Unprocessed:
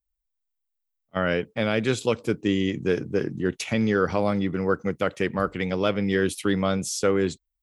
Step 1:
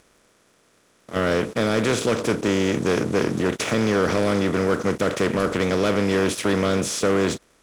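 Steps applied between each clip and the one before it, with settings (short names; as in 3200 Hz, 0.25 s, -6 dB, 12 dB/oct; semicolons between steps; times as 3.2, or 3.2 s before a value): per-bin compression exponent 0.4; sample leveller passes 2; gain -8 dB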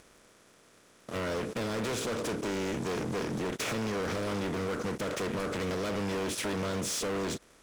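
compressor, threshold -25 dBFS, peak gain reduction 8.5 dB; hard clip -30 dBFS, distortion -8 dB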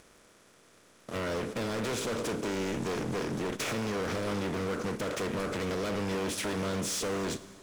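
Schroeder reverb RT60 1.9 s, combs from 31 ms, DRR 14 dB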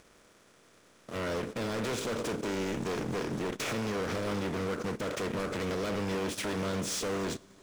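median filter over 3 samples; transient shaper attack -3 dB, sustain -8 dB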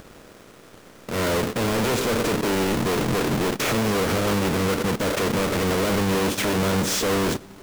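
half-waves squared off; gain +8 dB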